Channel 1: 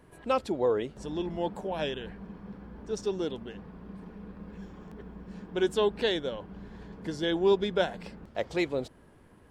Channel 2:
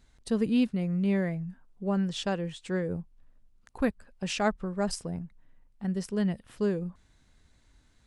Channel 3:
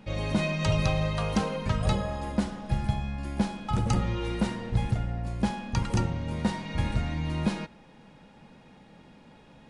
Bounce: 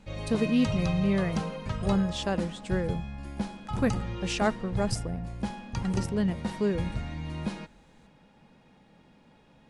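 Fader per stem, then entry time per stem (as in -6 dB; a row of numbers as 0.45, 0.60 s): off, +0.5 dB, -5.5 dB; off, 0.00 s, 0.00 s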